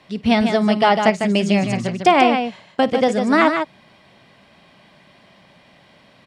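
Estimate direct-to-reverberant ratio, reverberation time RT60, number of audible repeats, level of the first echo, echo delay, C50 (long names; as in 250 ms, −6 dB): no reverb audible, no reverb audible, 2, −19.0 dB, 51 ms, no reverb audible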